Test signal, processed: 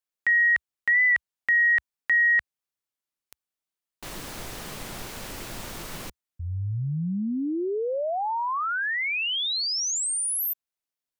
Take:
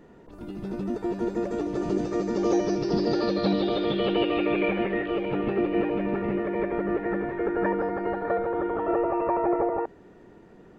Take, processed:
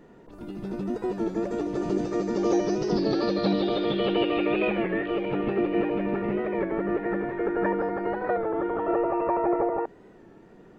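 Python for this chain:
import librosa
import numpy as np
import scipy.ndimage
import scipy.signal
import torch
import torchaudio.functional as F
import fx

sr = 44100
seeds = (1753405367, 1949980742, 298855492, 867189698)

y = fx.peak_eq(x, sr, hz=66.0, db=-10.0, octaves=0.47)
y = fx.record_warp(y, sr, rpm=33.33, depth_cents=100.0)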